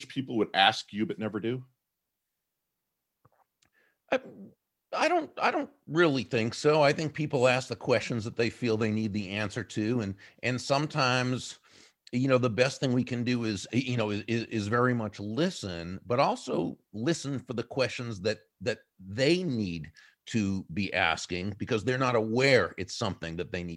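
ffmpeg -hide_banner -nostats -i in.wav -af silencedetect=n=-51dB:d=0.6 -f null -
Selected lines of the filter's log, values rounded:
silence_start: 1.65
silence_end: 3.25 | silence_duration: 1.61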